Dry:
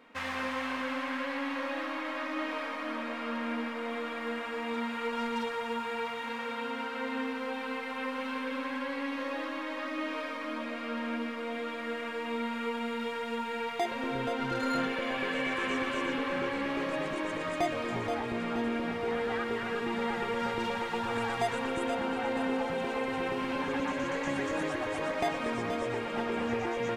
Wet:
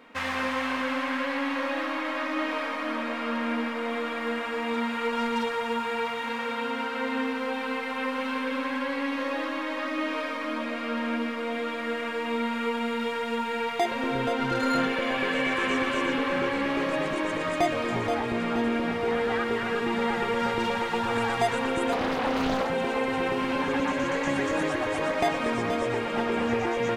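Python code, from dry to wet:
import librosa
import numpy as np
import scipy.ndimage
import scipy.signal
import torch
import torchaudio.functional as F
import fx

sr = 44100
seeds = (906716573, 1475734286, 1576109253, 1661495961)

y = fx.doppler_dist(x, sr, depth_ms=0.82, at=(21.92, 22.68))
y = F.gain(torch.from_numpy(y), 5.5).numpy()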